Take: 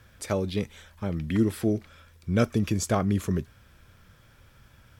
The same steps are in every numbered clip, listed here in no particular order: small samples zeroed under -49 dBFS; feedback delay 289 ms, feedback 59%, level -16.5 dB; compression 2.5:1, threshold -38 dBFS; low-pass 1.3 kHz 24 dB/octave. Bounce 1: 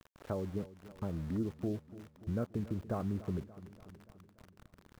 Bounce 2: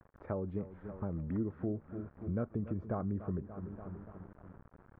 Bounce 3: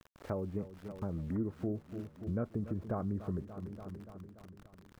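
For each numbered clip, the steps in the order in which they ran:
compression > low-pass > small samples zeroed > feedback delay; feedback delay > small samples zeroed > compression > low-pass; low-pass > small samples zeroed > feedback delay > compression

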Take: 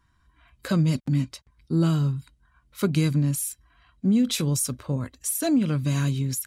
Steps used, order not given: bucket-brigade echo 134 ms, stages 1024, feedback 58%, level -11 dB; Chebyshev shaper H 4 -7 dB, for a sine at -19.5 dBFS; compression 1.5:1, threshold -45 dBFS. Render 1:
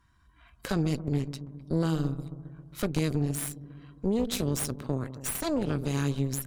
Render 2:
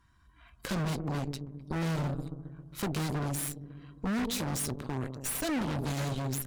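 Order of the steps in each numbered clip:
bucket-brigade echo > compression > Chebyshev shaper; bucket-brigade echo > Chebyshev shaper > compression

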